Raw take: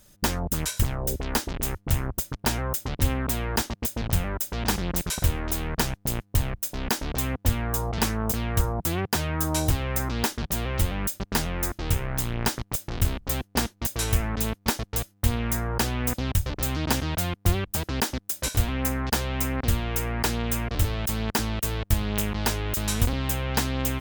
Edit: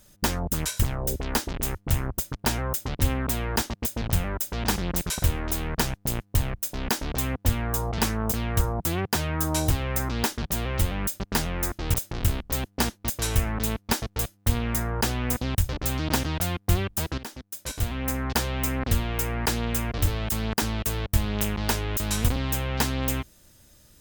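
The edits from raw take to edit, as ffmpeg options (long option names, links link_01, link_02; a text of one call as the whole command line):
ffmpeg -i in.wav -filter_complex "[0:a]asplit=3[link_01][link_02][link_03];[link_01]atrim=end=11.942[link_04];[link_02]atrim=start=12.708:end=17.95,asetpts=PTS-STARTPTS,afade=type=out:start_time=5.238:duration=0.004:curve=hsin:silence=0.177828[link_05];[link_03]atrim=start=17.95,asetpts=PTS-STARTPTS,afade=type=in:duration=1.17:silence=0.177828[link_06];[link_05][link_06]concat=n=2:v=0:a=1[link_07];[link_04][link_07]acrossfade=duration=0.004:curve1=hsin:curve2=hsin" out.wav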